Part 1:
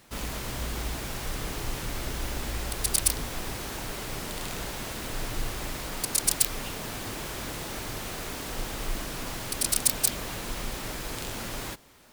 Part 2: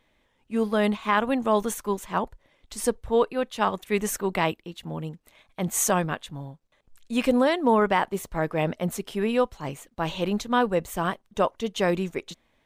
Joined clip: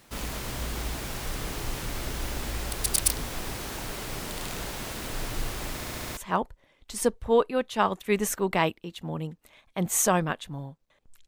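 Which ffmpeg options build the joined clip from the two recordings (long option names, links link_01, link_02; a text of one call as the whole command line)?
ffmpeg -i cue0.wav -i cue1.wav -filter_complex "[0:a]apad=whole_dur=11.27,atrim=end=11.27,asplit=6[link_01][link_02][link_03][link_04][link_05][link_06];[link_01]atrim=end=5.822[link_07];[link_02]atrim=start=5.748:end=5.822[link_08];[link_03]atrim=start=5.748:end=5.822[link_09];[link_04]atrim=start=5.748:end=5.822[link_10];[link_05]atrim=start=5.748:end=5.822[link_11];[link_06]atrim=start=5.748:end=5.822[link_12];[1:a]atrim=start=1.988:end=7.09[link_13];[link_07][link_08]acrossfade=duration=0.004:curve1=hsin:curve2=hsin[link_14];[link_14][link_09]acrossfade=duration=0.004:curve1=hsin:curve2=hsin[link_15];[link_15][link_10]acrossfade=duration=0.004:curve1=hsin:curve2=hsin[link_16];[link_16][link_11]acrossfade=duration=0.004:curve1=hsin:curve2=hsin[link_17];[link_17][link_12]acrossfade=duration=0.004:curve1=hsin:curve2=hsin[link_18];[link_18][link_13]acrossfade=duration=0.004:curve1=hsin:curve2=hsin" out.wav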